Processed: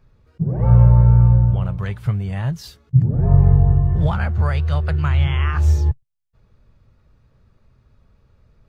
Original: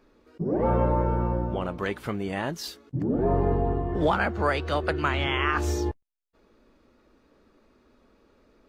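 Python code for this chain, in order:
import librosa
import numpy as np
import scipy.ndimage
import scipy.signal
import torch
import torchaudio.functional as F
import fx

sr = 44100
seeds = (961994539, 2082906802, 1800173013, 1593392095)

y = fx.low_shelf_res(x, sr, hz=190.0, db=14.0, q=3.0)
y = y * librosa.db_to_amplitude(-2.5)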